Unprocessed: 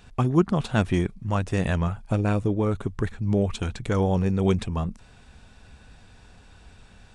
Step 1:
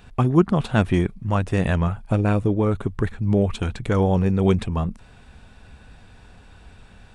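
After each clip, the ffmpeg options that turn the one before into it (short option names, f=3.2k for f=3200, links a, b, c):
-af "equalizer=f=6.2k:w=1:g=-6,volume=3.5dB"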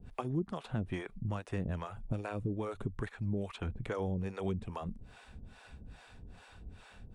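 -filter_complex "[0:a]acrossover=split=460[a][b];[a]aeval=exprs='val(0)*(1-1/2+1/2*cos(2*PI*2.4*n/s))':c=same[c];[b]aeval=exprs='val(0)*(1-1/2-1/2*cos(2*PI*2.4*n/s))':c=same[d];[c][d]amix=inputs=2:normalize=0,acrossover=split=510|2900[e][f][g];[e]acompressor=threshold=-34dB:ratio=4[h];[f]acompressor=threshold=-43dB:ratio=4[i];[g]acompressor=threshold=-59dB:ratio=4[j];[h][i][j]amix=inputs=3:normalize=0,volume=-1dB"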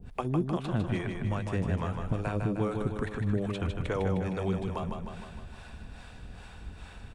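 -af "aecho=1:1:154|308|462|616|770|924|1078|1232:0.562|0.332|0.196|0.115|0.0681|0.0402|0.0237|0.014,volume=5dB"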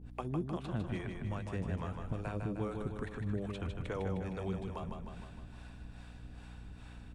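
-af "aeval=exprs='val(0)+0.00794*(sin(2*PI*60*n/s)+sin(2*PI*2*60*n/s)/2+sin(2*PI*3*60*n/s)/3+sin(2*PI*4*60*n/s)/4+sin(2*PI*5*60*n/s)/5)':c=same,volume=-7.5dB"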